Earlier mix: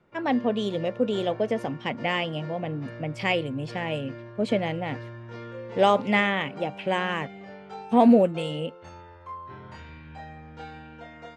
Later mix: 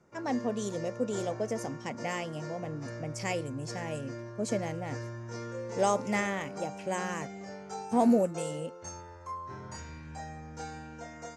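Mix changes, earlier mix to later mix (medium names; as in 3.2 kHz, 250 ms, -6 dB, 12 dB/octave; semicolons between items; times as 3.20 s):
speech -7.0 dB; master: add resonant high shelf 4.6 kHz +12 dB, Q 3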